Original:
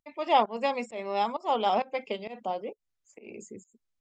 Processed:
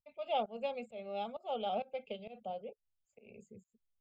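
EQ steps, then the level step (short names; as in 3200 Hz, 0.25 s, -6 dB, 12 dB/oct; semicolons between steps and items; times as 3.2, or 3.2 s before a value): air absorption 120 m; fixed phaser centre 770 Hz, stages 4; fixed phaser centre 2400 Hz, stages 4; -1.0 dB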